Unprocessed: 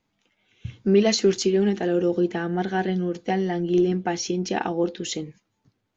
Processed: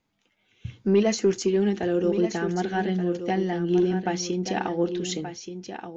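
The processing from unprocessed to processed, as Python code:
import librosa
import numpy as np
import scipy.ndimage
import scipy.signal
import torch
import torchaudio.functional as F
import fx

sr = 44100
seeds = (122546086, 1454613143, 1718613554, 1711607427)

y = fx.peak_eq(x, sr, hz=3800.0, db=-9.5, octaves=0.8, at=(1.03, 1.48))
y = 10.0 ** (-7.0 / 20.0) * np.tanh(y / 10.0 ** (-7.0 / 20.0))
y = y + 10.0 ** (-9.5 / 20.0) * np.pad(y, (int(1178 * sr / 1000.0), 0))[:len(y)]
y = F.gain(torch.from_numpy(y), -1.5).numpy()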